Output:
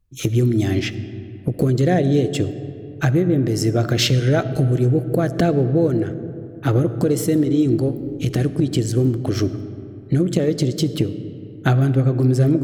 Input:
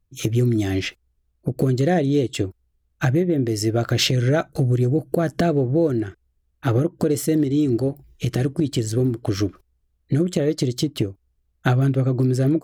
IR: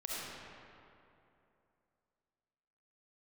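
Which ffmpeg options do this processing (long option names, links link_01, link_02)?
-filter_complex "[0:a]asplit=2[link_01][link_02];[1:a]atrim=start_sample=2205,lowshelf=frequency=420:gain=11.5[link_03];[link_02][link_03]afir=irnorm=-1:irlink=0,volume=-16dB[link_04];[link_01][link_04]amix=inputs=2:normalize=0"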